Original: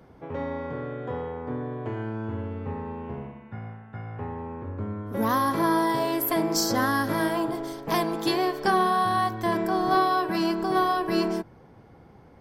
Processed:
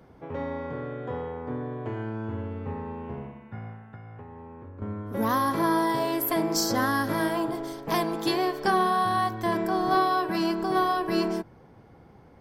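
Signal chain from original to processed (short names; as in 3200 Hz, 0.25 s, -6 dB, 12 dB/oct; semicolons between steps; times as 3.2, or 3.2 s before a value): 3.84–4.82 compressor 6:1, threshold -40 dBFS, peak gain reduction 11 dB; gain -1 dB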